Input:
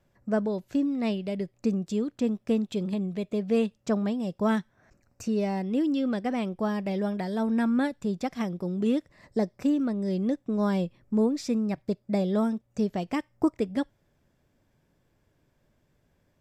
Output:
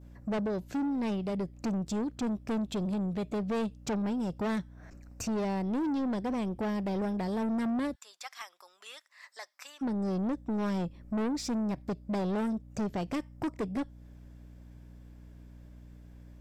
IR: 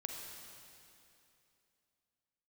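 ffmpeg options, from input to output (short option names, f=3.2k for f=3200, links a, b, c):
-filter_complex "[0:a]asplit=2[a][b];[b]acompressor=threshold=-39dB:ratio=6,volume=0.5dB[c];[a][c]amix=inputs=2:normalize=0,adynamicequalizer=threshold=0.00447:dfrequency=2100:dqfactor=0.75:tfrequency=2100:tqfactor=0.75:attack=5:release=100:ratio=0.375:range=3:mode=cutabove:tftype=bell,aeval=exprs='val(0)+0.00355*(sin(2*PI*60*n/s)+sin(2*PI*2*60*n/s)/2+sin(2*PI*3*60*n/s)/3+sin(2*PI*4*60*n/s)/4+sin(2*PI*5*60*n/s)/5)':c=same,asplit=3[d][e][f];[d]afade=t=out:st=7.94:d=0.02[g];[e]highpass=f=1.1k:w=0.5412,highpass=f=1.1k:w=1.3066,afade=t=in:st=7.94:d=0.02,afade=t=out:st=9.81:d=0.02[h];[f]afade=t=in:st=9.81:d=0.02[i];[g][h][i]amix=inputs=3:normalize=0,asoftclip=type=tanh:threshold=-28dB"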